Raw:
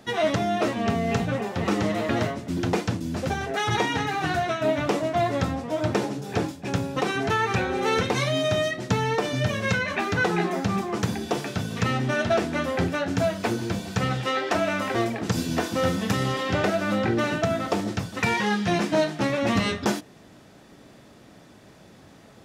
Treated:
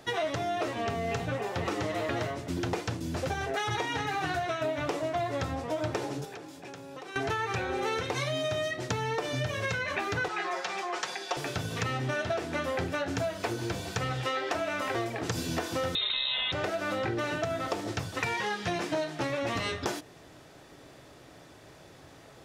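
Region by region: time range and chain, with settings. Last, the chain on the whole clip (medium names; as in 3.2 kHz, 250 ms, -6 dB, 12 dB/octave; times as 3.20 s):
6.24–7.16 s: high-pass 180 Hz + compression 16:1, threshold -38 dBFS
10.28–11.37 s: band-pass 720–7000 Hz + comb 5.5 ms, depth 73%
15.95–16.52 s: distance through air 140 m + frequency inversion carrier 3.9 kHz + level flattener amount 100%
whole clip: peaking EQ 210 Hz -14 dB 0.43 oct; hum notches 50/100 Hz; compression, threshold -28 dBFS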